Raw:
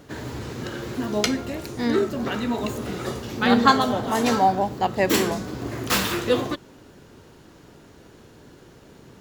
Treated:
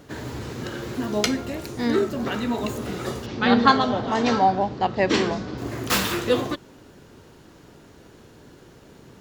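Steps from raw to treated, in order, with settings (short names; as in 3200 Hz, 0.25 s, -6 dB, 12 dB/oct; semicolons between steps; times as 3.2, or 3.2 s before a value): 3.26–5.58 LPF 5500 Hz 24 dB/oct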